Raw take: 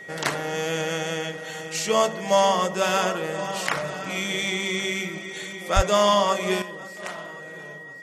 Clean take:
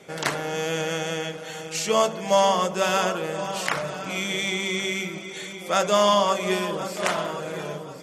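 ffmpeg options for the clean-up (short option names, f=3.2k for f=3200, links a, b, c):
-filter_complex "[0:a]bandreject=f=1.9k:w=30,asplit=3[a][b][c];[a]afade=t=out:st=5.75:d=0.02[d];[b]highpass=f=140:w=0.5412,highpass=f=140:w=1.3066,afade=t=in:st=5.75:d=0.02,afade=t=out:st=5.87:d=0.02[e];[c]afade=t=in:st=5.87:d=0.02[f];[d][e][f]amix=inputs=3:normalize=0,asetnsamples=n=441:p=0,asendcmd='6.62 volume volume 10.5dB',volume=0dB"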